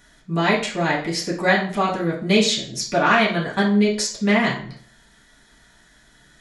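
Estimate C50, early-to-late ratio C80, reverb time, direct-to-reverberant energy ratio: 7.5 dB, 12.5 dB, 0.45 s, −6.0 dB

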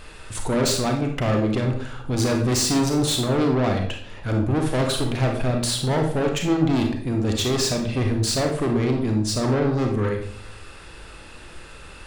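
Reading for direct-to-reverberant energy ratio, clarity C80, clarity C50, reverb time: 2.0 dB, 9.5 dB, 5.0 dB, 0.65 s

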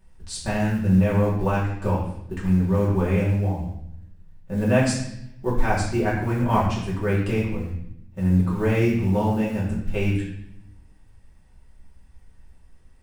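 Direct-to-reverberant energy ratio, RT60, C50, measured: −7.5 dB, 0.75 s, 3.5 dB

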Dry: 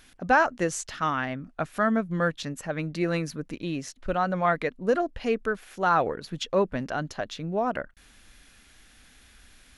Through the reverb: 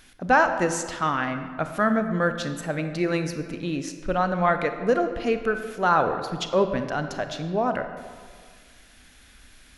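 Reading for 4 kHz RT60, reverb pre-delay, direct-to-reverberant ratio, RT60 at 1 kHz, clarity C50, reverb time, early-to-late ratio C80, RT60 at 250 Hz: 1.0 s, 29 ms, 7.5 dB, 1.8 s, 8.5 dB, 1.8 s, 9.5 dB, 1.9 s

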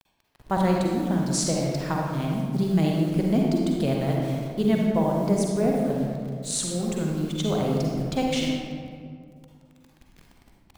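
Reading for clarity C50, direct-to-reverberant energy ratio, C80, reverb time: −0.5 dB, −1.5 dB, 1.5 dB, 2.1 s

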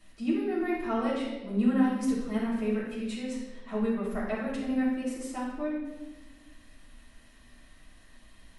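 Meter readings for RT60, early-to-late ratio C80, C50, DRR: 1.2 s, 4.0 dB, 1.0 dB, −9.5 dB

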